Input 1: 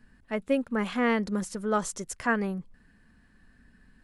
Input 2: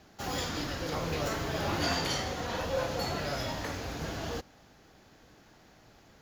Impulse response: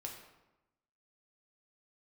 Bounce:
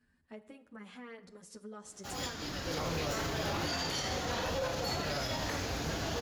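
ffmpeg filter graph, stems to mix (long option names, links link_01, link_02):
-filter_complex "[0:a]acompressor=threshold=-33dB:ratio=5,highpass=44,asplit=2[link_01][link_02];[link_02]adelay=8.9,afreqshift=-0.8[link_03];[link_01][link_03]amix=inputs=2:normalize=1,volume=-12.5dB,asplit=3[link_04][link_05][link_06];[link_05]volume=-3.5dB[link_07];[1:a]adelay=1850,volume=1.5dB[link_08];[link_06]apad=whole_len=355649[link_09];[link_08][link_09]sidechaincompress=threshold=-57dB:ratio=8:attack=25:release=475[link_10];[2:a]atrim=start_sample=2205[link_11];[link_07][link_11]afir=irnorm=-1:irlink=0[link_12];[link_04][link_10][link_12]amix=inputs=3:normalize=0,equalizer=frequency=5900:width_type=o:width=2.2:gain=3.5,alimiter=level_in=1.5dB:limit=-24dB:level=0:latency=1:release=64,volume=-1.5dB"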